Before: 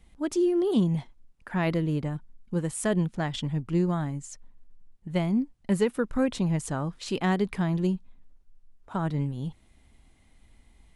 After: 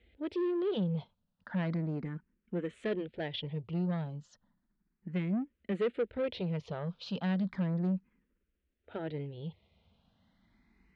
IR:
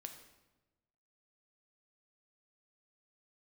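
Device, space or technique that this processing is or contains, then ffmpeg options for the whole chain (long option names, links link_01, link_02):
barber-pole phaser into a guitar amplifier: -filter_complex "[0:a]asplit=2[link_01][link_02];[link_02]afreqshift=0.34[link_03];[link_01][link_03]amix=inputs=2:normalize=1,asoftclip=type=tanh:threshold=-28dB,highpass=78,equalizer=frequency=130:width_type=q:width=4:gain=-9,equalizer=frequency=190:width_type=q:width=4:gain=3,equalizer=frequency=280:width_type=q:width=4:gain=-4,equalizer=frequency=470:width_type=q:width=4:gain=4,equalizer=frequency=780:width_type=q:width=4:gain=-6,equalizer=frequency=1100:width_type=q:width=4:gain=-5,lowpass=frequency=3900:width=0.5412,lowpass=frequency=3900:width=1.3066"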